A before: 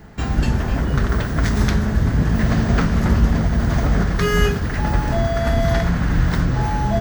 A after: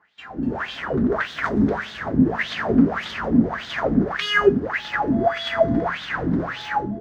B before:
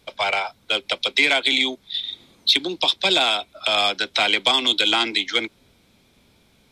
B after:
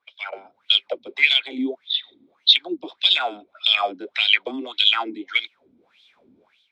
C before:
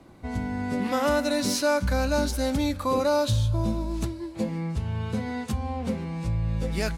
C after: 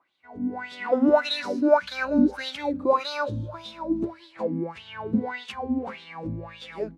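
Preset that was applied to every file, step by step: wah 1.7 Hz 250–3600 Hz, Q 6.4; AGC gain up to 15.5 dB; gain -1 dB

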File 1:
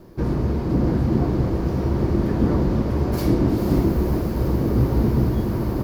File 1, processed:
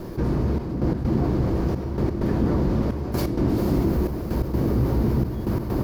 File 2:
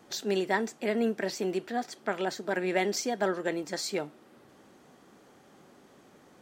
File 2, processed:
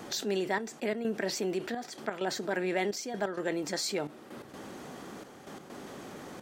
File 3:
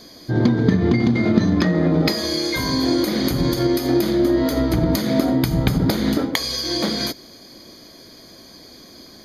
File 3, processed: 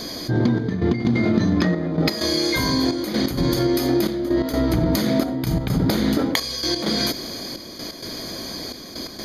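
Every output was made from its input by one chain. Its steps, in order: step gate "xxxxx..x.x" 129 bpm -12 dB; fast leveller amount 50%; gain -4 dB

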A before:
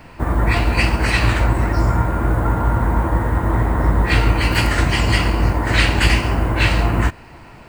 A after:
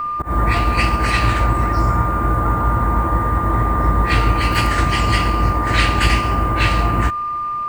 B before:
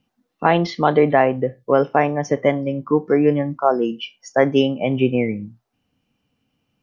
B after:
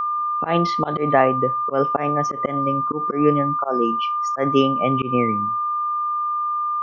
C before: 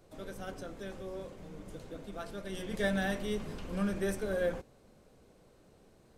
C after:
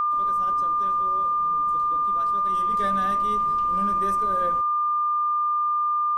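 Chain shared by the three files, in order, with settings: whine 1200 Hz -19 dBFS; auto swell 0.119 s; gain -1 dB

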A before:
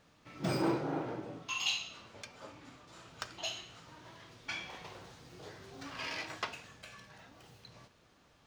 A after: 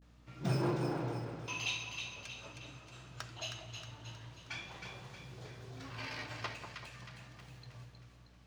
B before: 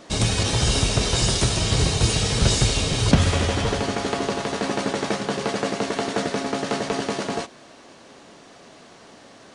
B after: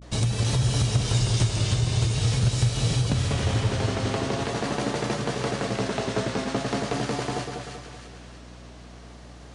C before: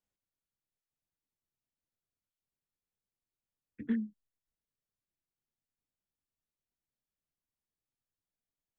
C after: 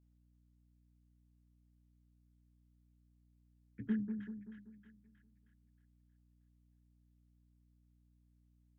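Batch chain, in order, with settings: bell 120 Hz +14 dB 0.42 oct; compressor 6:1, threshold -17 dBFS; vibrato 0.45 Hz 86 cents; split-band echo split 1200 Hz, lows 0.192 s, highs 0.315 s, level -6 dB; hum 60 Hz, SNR 20 dB; gain -4 dB

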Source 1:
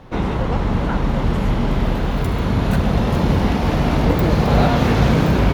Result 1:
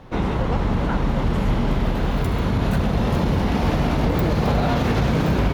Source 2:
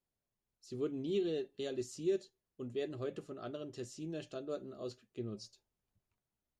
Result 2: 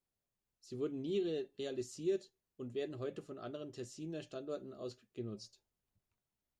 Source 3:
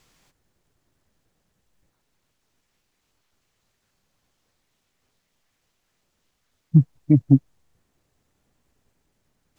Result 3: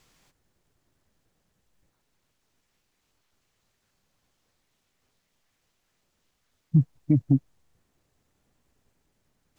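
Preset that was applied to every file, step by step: limiter -9.5 dBFS; gain -1.5 dB

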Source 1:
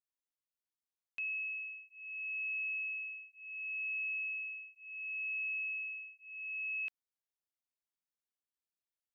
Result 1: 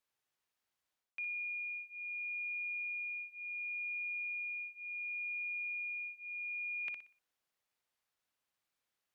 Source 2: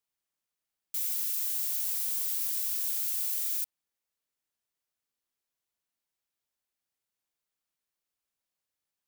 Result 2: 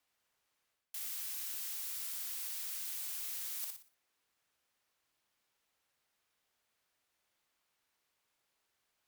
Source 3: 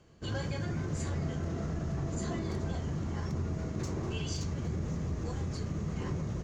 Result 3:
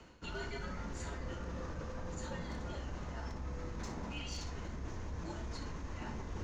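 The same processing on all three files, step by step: low shelf 470 Hz -10.5 dB; frequency shift -150 Hz; high shelf 4300 Hz -10.5 dB; on a send: flutter echo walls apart 10.4 m, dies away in 0.36 s; on the sum: one-sided clip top -35 dBFS; reverse; compressor 4:1, threshold -54 dBFS; reverse; gain +13 dB

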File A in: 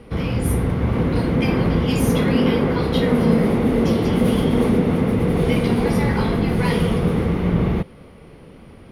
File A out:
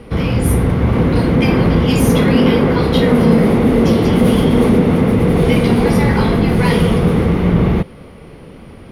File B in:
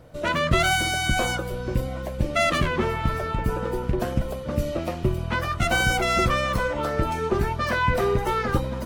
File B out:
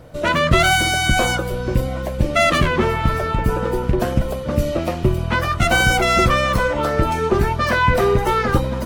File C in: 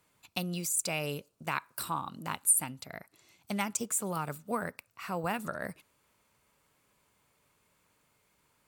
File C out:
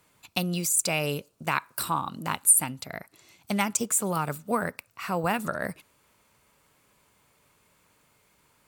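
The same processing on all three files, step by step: soft clip -6.5 dBFS; gain +6.5 dB

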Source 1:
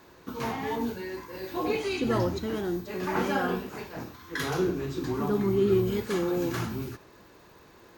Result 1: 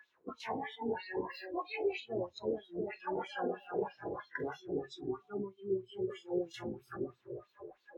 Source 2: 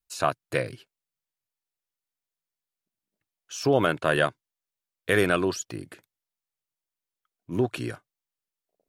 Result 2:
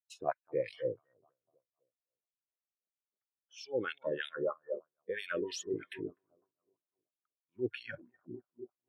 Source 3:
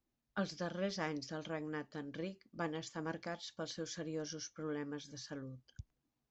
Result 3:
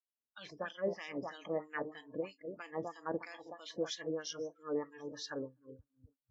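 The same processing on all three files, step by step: low shelf 130 Hz +10 dB; notch 4600 Hz, Q 8.8; on a send: analogue delay 0.25 s, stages 2048, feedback 40%, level -10.5 dB; on the sum: dynamic EQ 1300 Hz, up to -5 dB, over -43 dBFS, Q 1.9; reverse; compressor 8:1, threshold -38 dBFS; reverse; wah 3.1 Hz 420–4000 Hz, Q 2.4; spectral noise reduction 23 dB; gain +13 dB

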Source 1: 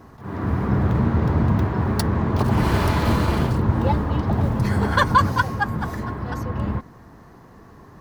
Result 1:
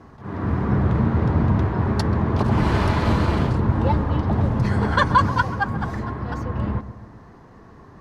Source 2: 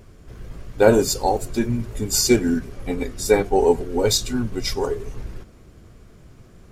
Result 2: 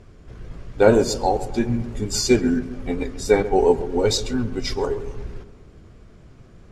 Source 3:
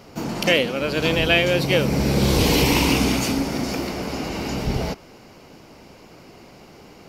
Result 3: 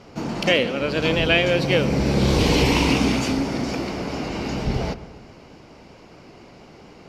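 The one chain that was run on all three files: vibrato 4.4 Hz 34 cents; air absorption 61 m; darkening echo 0.134 s, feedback 55%, low-pass 1600 Hz, level -14 dB

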